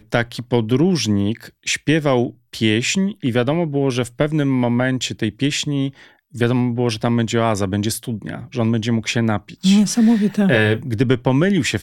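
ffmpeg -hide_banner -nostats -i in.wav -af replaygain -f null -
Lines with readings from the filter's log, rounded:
track_gain = -0.9 dB
track_peak = 0.584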